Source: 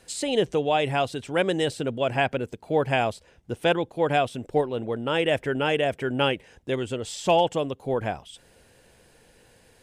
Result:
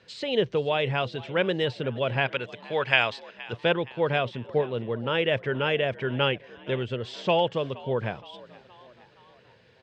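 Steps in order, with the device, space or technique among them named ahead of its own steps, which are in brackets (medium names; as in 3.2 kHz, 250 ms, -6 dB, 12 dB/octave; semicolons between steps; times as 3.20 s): 2.26–3.53 s: tilt shelf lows -9.5 dB, about 700 Hz; frequency-shifting delay pedal into a guitar cabinet (frequency-shifting echo 470 ms, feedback 53%, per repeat +63 Hz, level -20 dB; cabinet simulation 110–4400 Hz, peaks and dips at 120 Hz +6 dB, 290 Hz -8 dB, 750 Hz -8 dB)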